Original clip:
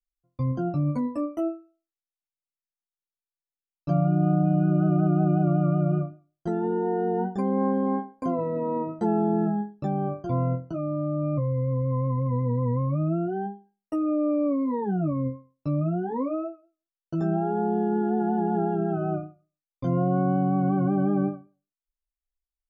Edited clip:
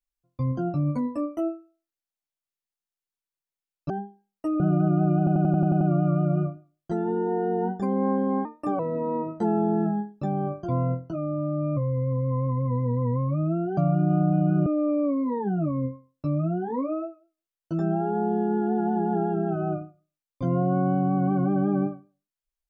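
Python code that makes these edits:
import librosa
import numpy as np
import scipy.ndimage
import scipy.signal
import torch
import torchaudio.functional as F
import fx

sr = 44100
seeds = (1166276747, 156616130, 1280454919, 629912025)

y = fx.edit(x, sr, fx.swap(start_s=3.9, length_s=0.89, other_s=13.38, other_length_s=0.7),
    fx.stutter(start_s=5.37, slice_s=0.09, count=8),
    fx.speed_span(start_s=8.01, length_s=0.39, speed=1.14), tone=tone)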